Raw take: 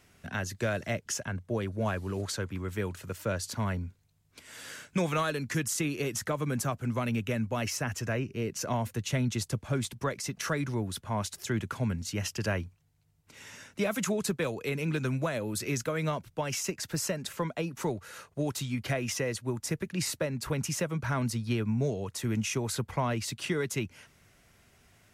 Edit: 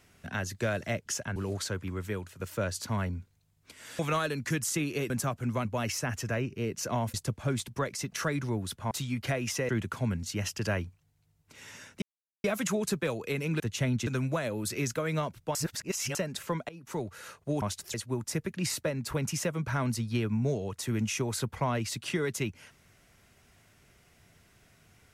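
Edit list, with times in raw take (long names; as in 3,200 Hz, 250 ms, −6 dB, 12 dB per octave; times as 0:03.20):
0:01.36–0:02.04: remove
0:02.67–0:03.08: fade out, to −7.5 dB
0:04.67–0:05.03: remove
0:06.14–0:06.51: remove
0:07.06–0:07.43: remove
0:08.92–0:09.39: move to 0:14.97
0:11.16–0:11.48: swap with 0:18.52–0:19.30
0:13.81: splice in silence 0.42 s
0:16.45–0:17.05: reverse
0:17.59–0:18.01: fade in, from −22 dB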